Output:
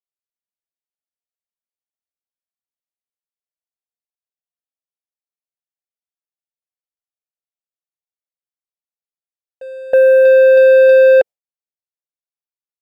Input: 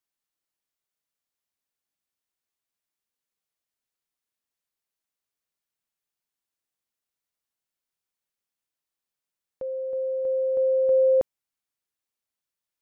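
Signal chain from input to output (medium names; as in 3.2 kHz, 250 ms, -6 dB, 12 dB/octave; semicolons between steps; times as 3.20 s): gate with hold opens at -27 dBFS; high-order bell 600 Hz +10.5 dB 1 oct; compression 16:1, threshold -13 dBFS, peak gain reduction 7 dB; waveshaping leveller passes 2; trim +5.5 dB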